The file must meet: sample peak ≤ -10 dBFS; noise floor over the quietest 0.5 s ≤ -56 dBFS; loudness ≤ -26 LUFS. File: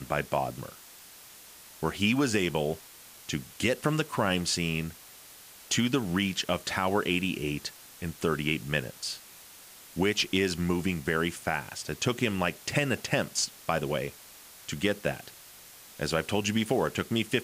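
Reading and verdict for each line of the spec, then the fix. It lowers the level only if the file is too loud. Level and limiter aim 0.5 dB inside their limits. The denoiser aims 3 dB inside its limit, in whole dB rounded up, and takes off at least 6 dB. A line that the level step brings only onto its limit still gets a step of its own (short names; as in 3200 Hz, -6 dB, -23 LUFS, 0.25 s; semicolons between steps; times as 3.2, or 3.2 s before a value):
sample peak -12.5 dBFS: OK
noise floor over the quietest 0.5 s -51 dBFS: fail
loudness -29.5 LUFS: OK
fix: denoiser 8 dB, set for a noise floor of -51 dBFS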